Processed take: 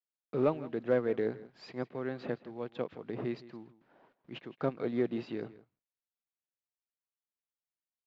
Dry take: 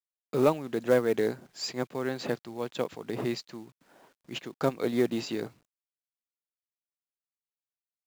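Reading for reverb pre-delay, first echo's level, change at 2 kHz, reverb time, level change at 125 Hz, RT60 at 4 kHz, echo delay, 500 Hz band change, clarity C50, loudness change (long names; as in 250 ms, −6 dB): no reverb audible, −18.0 dB, −7.0 dB, no reverb audible, −4.0 dB, no reverb audible, 164 ms, −5.0 dB, no reverb audible, −5.0 dB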